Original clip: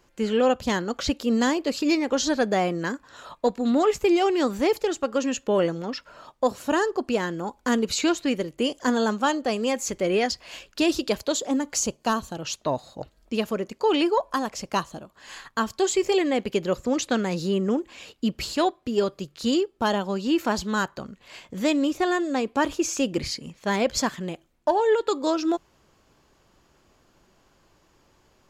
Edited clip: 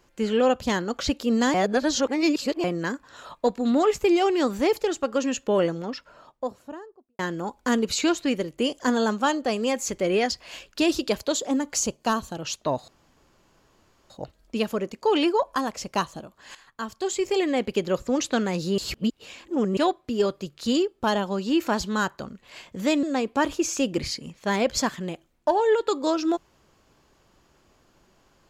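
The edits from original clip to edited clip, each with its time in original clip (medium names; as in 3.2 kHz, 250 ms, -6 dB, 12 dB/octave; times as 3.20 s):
1.54–2.64 s: reverse
5.60–7.19 s: studio fade out
12.88 s: insert room tone 1.22 s
15.33–16.40 s: fade in, from -13.5 dB
17.56–18.55 s: reverse
21.81–22.23 s: delete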